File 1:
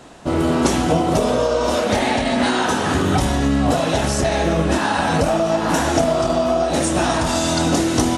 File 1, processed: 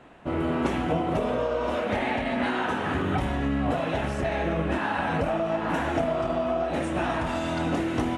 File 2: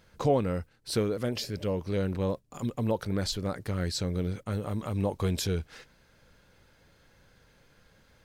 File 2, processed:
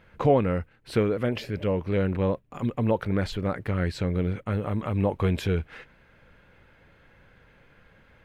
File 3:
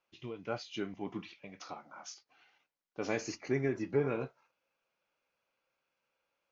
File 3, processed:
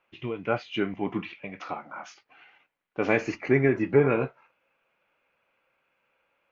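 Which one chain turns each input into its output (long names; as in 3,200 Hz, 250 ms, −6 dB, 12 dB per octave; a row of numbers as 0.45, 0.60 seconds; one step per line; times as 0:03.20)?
high shelf with overshoot 3,600 Hz −12.5 dB, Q 1.5
loudness normalisation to −27 LKFS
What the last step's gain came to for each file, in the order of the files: −8.5, +4.5, +10.0 decibels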